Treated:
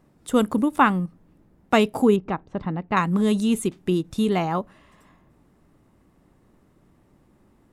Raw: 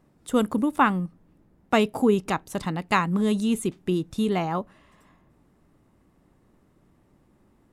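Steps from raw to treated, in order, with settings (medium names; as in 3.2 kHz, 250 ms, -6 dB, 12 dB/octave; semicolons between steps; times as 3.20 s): 2.16–2.97 s: tape spacing loss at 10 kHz 43 dB; endings held to a fixed fall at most 580 dB/s; trim +2.5 dB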